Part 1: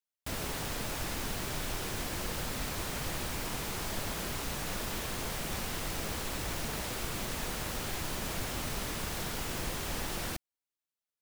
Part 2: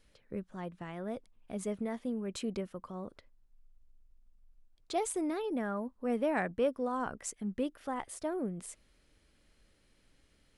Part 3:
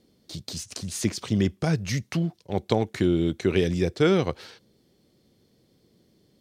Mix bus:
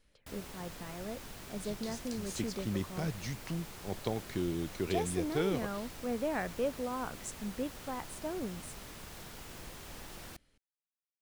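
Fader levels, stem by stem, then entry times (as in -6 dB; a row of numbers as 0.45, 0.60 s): -11.5, -3.0, -12.0 dB; 0.00, 0.00, 1.35 s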